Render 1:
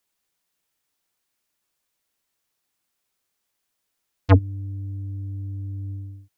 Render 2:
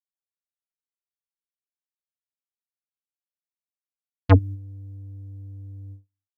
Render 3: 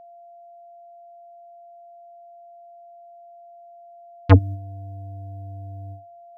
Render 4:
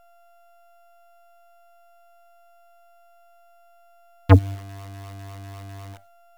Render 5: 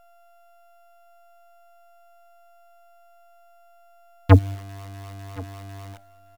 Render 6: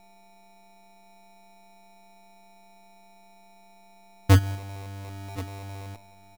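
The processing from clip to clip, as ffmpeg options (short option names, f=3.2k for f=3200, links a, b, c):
-af "agate=range=-47dB:threshold=-30dB:ratio=16:detection=peak"
-af "aeval=exprs='val(0)+0.00501*sin(2*PI*690*n/s)':c=same,volume=2.5dB"
-filter_complex "[0:a]asplit=2[a][b];[b]aeval=exprs='sgn(val(0))*max(abs(val(0))-0.015,0)':c=same,volume=-3.5dB[c];[a][c]amix=inputs=2:normalize=0,acrusher=bits=7:dc=4:mix=0:aa=0.000001,volume=-4.5dB"
-af "aecho=1:1:1068:0.0891"
-af "acrusher=samples=28:mix=1:aa=0.000001,asoftclip=type=tanh:threshold=-11dB"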